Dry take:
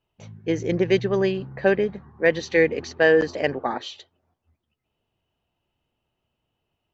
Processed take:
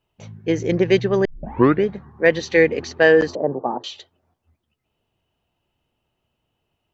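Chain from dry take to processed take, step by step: 1.25 s: tape start 0.59 s; 3.35–3.84 s: elliptic band-pass 120–1000 Hz, stop band 40 dB; trim +3.5 dB

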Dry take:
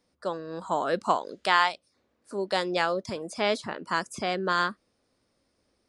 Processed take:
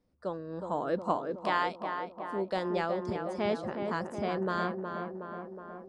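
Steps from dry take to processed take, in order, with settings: tilt EQ -3 dB/octave; on a send: tape echo 367 ms, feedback 74%, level -4.5 dB, low-pass 1.7 kHz; on the sum: trim -7 dB

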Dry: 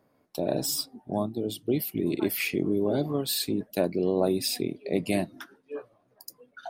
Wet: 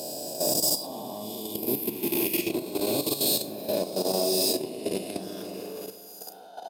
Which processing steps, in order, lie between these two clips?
reverse spectral sustain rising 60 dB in 2.46 s; in parallel at -11 dB: wavefolder -22.5 dBFS; on the sum: high-pass 260 Hz 6 dB/octave; high-order bell 1.7 kHz -10.5 dB 1.1 oct; doubling 37 ms -8 dB; on a send: delay with an opening low-pass 163 ms, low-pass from 750 Hz, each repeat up 1 oct, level -6 dB; on the sum: level held to a coarse grid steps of 11 dB; treble shelf 8.5 kHz +7 dB; plate-style reverb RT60 0.77 s, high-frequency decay 0.75×, DRR 14.5 dB; trim -4 dB

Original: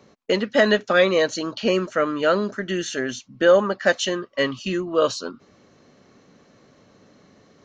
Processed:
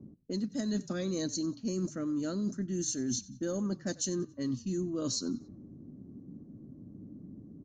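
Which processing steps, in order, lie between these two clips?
FFT filter 310 Hz 0 dB, 460 Hz -18 dB, 3 kHz -24 dB, 6.4 kHz +5 dB; level-controlled noise filter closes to 510 Hz, open at -24 dBFS; dynamic bell 4.2 kHz, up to +7 dB, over -58 dBFS, Q 5.9; reverse; compression 12:1, threshold -39 dBFS, peak gain reduction 18 dB; reverse; frequency-shifting echo 92 ms, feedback 38%, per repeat -37 Hz, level -21 dB; trim +8.5 dB

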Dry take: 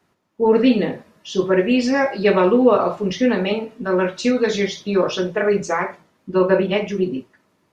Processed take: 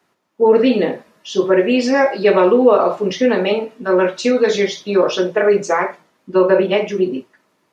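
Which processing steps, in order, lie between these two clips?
dynamic bell 450 Hz, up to +5 dB, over -27 dBFS, Q 0.71; in parallel at +0.5 dB: peak limiter -7 dBFS, peak gain reduction 8.5 dB; on the sum: high-pass 330 Hz 6 dB/octave; trim -3.5 dB

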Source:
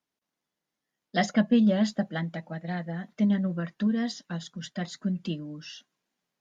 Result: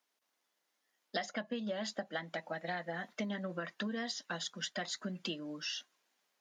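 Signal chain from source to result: Bessel high-pass 550 Hz, order 2; compression 12:1, threshold -40 dBFS, peak gain reduction 18.5 dB; trim +5.5 dB

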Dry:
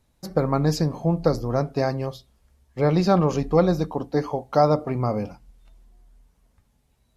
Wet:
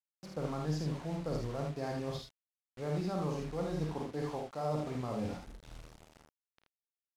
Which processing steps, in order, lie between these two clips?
reverse; compression 5:1, threshold -34 dBFS, peak gain reduction 19 dB; reverse; bit crusher 8-bit; distance through air 53 m; early reflections 33 ms -12 dB, 52 ms -4.5 dB, 79 ms -4.5 dB; trim -3 dB

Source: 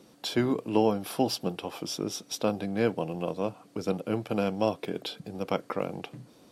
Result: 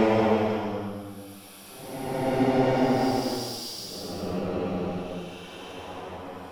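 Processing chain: Chebyshev shaper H 5 -23 dB, 7 -16 dB, 8 -31 dB, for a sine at -10 dBFS; Paulstretch 7.7×, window 0.25 s, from 0.87 s; trim +3.5 dB

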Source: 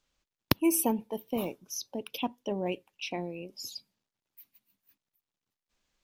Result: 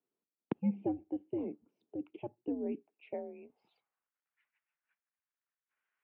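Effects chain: band-pass sweep 430 Hz -> 1.7 kHz, 2.73–4.23 s; mistuned SSB -130 Hz 330–3100 Hz; trim +1 dB

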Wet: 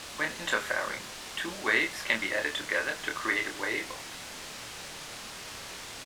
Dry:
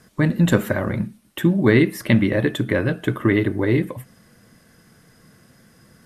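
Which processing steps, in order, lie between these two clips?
high-pass 1 kHz 12 dB/octave; word length cut 6-bit, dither triangular; distance through air 68 m; doubling 27 ms -5 dB; trim -1.5 dB

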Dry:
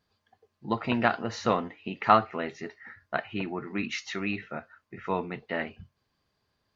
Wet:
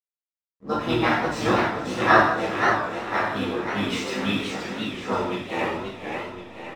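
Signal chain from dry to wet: hysteresis with a dead band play -40.5 dBFS; echo that smears into a reverb 497 ms, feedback 53%, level -14.5 dB; harmony voices -12 st -10 dB, +5 st -1 dB, +7 st -16 dB; gated-style reverb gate 250 ms falling, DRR -6.5 dB; modulated delay 527 ms, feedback 45%, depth 148 cents, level -5 dB; trim -5 dB

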